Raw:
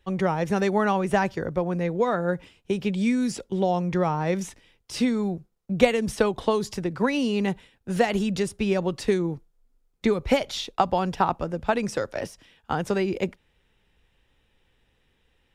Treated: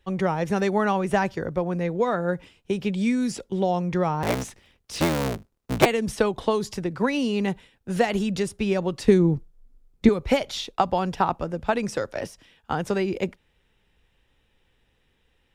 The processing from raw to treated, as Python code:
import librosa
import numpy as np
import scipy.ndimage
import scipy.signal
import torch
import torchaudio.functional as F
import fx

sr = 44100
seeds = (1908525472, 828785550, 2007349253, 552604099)

y = fx.cycle_switch(x, sr, every=3, mode='inverted', at=(4.22, 5.86))
y = fx.low_shelf(y, sr, hz=340.0, db=11.5, at=(9.07, 10.09))